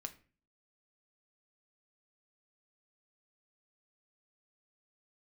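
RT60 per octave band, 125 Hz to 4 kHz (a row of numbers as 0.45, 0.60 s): 0.55, 0.55, 0.45, 0.35, 0.40, 0.30 s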